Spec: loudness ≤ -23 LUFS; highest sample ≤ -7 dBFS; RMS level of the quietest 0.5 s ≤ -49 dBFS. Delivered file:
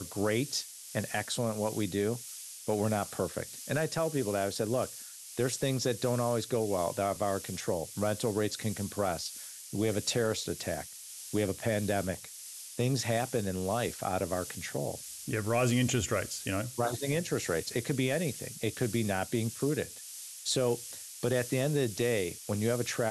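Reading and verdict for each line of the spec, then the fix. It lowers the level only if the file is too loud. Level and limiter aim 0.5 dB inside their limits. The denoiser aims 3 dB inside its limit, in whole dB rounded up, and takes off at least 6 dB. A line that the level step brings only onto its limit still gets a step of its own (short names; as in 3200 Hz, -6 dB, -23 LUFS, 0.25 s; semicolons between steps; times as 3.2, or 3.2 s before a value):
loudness -32.5 LUFS: OK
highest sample -18.0 dBFS: OK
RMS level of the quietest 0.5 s -46 dBFS: fail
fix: denoiser 6 dB, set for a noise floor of -46 dBFS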